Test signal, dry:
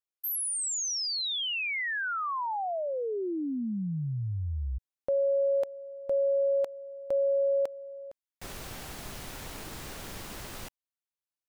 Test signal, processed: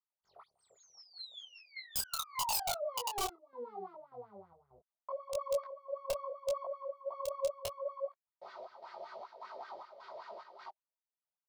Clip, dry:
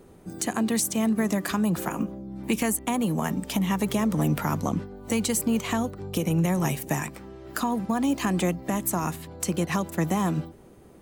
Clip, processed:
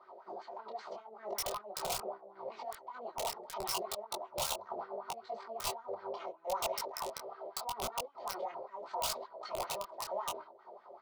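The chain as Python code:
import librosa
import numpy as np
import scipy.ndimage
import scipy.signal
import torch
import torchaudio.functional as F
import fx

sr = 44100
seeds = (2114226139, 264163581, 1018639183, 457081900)

y = fx.lower_of_two(x, sr, delay_ms=3.2)
y = fx.over_compress(y, sr, threshold_db=-33.0, ratio=-1.0)
y = fx.chopper(y, sr, hz=1.7, depth_pct=60, duty_pct=70)
y = fx.cabinet(y, sr, low_hz=170.0, low_slope=12, high_hz=4800.0, hz=(380.0, 570.0, 1800.0, 2700.0, 4500.0), db=(8, -5, 9, -7, 8))
y = fx.wah_lfo(y, sr, hz=5.2, low_hz=530.0, high_hz=1700.0, q=8.0)
y = (np.mod(10.0 ** (38.0 / 20.0) * y + 1.0, 2.0) - 1.0) / 10.0 ** (38.0 / 20.0)
y = fx.fixed_phaser(y, sr, hz=710.0, stages=4)
y = fx.detune_double(y, sr, cents=26)
y = y * librosa.db_to_amplitude(16.5)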